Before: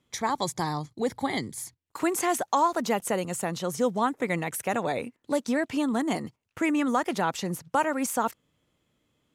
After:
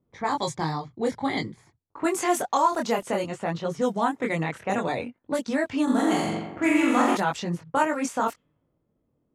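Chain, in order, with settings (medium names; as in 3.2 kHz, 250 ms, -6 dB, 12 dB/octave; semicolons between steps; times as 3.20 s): 5.83–7.15 s: flutter echo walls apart 7.4 m, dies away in 1.3 s; level-controlled noise filter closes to 690 Hz, open at -21.5 dBFS; chorus voices 2, 0.55 Hz, delay 22 ms, depth 3.8 ms; trim +4.5 dB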